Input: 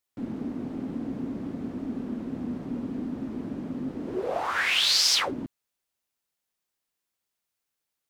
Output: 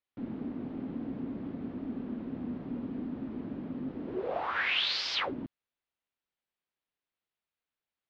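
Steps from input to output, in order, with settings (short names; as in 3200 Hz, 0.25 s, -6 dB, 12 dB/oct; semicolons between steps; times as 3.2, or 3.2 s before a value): LPF 3800 Hz 24 dB/oct; gain -4.5 dB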